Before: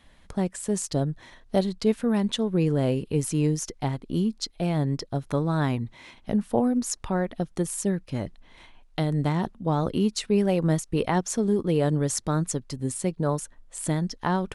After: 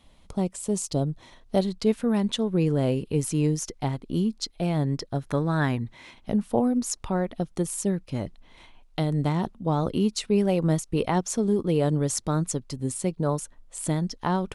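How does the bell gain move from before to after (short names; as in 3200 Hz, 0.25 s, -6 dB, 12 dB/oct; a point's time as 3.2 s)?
bell 1700 Hz 0.4 oct
1.09 s -14 dB
1.66 s -2.5 dB
4.73 s -2.5 dB
5.58 s +7.5 dB
6.32 s -4.5 dB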